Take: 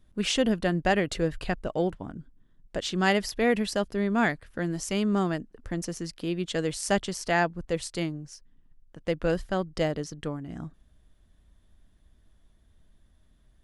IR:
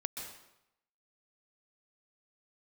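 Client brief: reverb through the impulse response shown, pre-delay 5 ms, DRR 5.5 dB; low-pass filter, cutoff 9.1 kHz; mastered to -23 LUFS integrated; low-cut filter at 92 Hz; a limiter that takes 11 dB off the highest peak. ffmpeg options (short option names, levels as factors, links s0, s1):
-filter_complex "[0:a]highpass=92,lowpass=9100,alimiter=limit=0.0944:level=0:latency=1,asplit=2[s0][s1];[1:a]atrim=start_sample=2205,adelay=5[s2];[s1][s2]afir=irnorm=-1:irlink=0,volume=0.501[s3];[s0][s3]amix=inputs=2:normalize=0,volume=2.37"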